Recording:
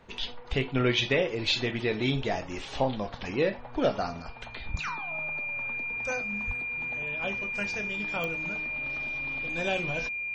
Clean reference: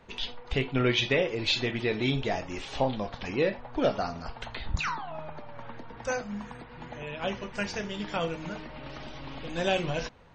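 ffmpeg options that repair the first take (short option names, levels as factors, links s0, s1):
-filter_complex "[0:a]adeclick=t=4,bandreject=f=2400:w=30,asplit=3[s0][s1][s2];[s0]afade=t=out:st=6.46:d=0.02[s3];[s1]highpass=f=140:w=0.5412,highpass=f=140:w=1.3066,afade=t=in:st=6.46:d=0.02,afade=t=out:st=6.58:d=0.02[s4];[s2]afade=t=in:st=6.58:d=0.02[s5];[s3][s4][s5]amix=inputs=3:normalize=0,asetnsamples=n=441:p=0,asendcmd='4.22 volume volume 3.5dB',volume=1"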